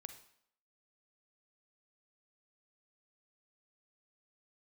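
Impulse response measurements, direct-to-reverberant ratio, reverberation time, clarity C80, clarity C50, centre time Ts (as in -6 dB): 8.0 dB, 0.70 s, 13.0 dB, 9.5 dB, 11 ms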